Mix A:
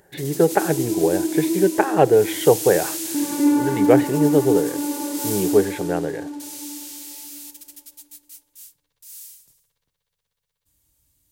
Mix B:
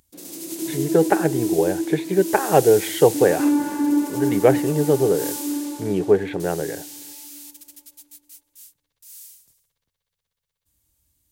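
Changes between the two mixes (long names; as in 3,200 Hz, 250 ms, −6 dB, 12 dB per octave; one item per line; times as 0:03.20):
speech: entry +0.55 s
background: send off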